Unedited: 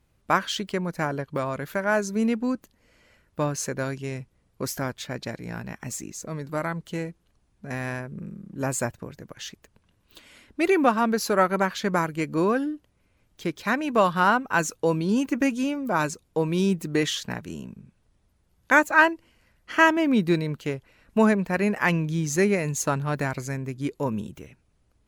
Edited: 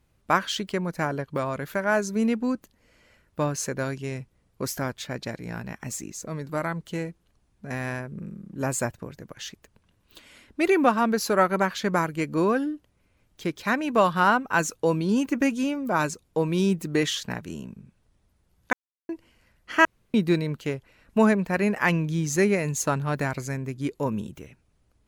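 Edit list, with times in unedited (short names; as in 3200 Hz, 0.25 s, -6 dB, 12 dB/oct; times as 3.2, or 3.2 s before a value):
18.73–19.09 mute
19.85–20.14 room tone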